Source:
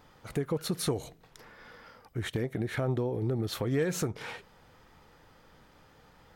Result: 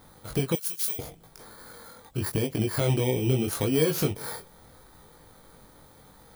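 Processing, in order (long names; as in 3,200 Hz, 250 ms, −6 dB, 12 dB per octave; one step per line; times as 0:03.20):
samples in bit-reversed order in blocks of 16 samples
chorus effect 0.78 Hz, delay 19 ms, depth 4.9 ms
0:00.55–0:00.99: first-order pre-emphasis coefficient 0.97
level +8.5 dB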